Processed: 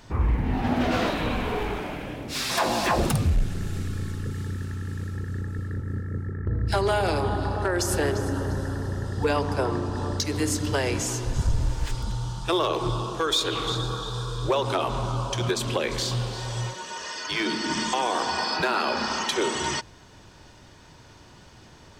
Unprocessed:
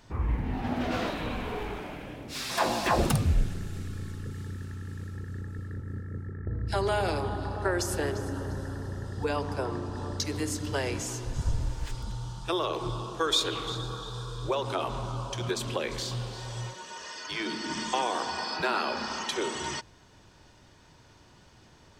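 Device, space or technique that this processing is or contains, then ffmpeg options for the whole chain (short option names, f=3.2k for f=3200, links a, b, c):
limiter into clipper: -af "alimiter=limit=-19dB:level=0:latency=1:release=272,asoftclip=type=hard:threshold=-22.5dB,volume=6.5dB"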